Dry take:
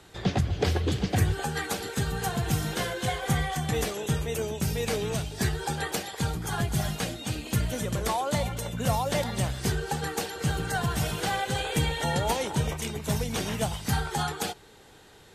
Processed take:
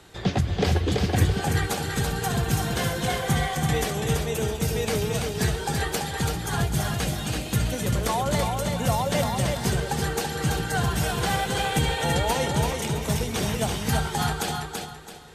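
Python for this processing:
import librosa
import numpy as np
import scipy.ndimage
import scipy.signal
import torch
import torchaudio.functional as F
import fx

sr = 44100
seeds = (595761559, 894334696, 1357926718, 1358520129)

y = fx.echo_feedback(x, sr, ms=333, feedback_pct=32, wet_db=-4.0)
y = F.gain(torch.from_numpy(y), 2.0).numpy()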